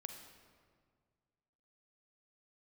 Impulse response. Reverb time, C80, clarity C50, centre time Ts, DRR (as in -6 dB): 1.9 s, 7.5 dB, 5.5 dB, 36 ms, 5.0 dB